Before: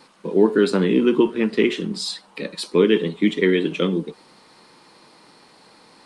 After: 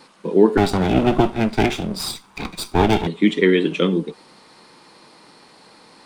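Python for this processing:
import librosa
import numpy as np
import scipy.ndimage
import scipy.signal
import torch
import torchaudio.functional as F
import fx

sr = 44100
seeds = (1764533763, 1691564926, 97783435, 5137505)

y = fx.lower_of_two(x, sr, delay_ms=0.85, at=(0.57, 3.07))
y = y * 10.0 ** (2.5 / 20.0)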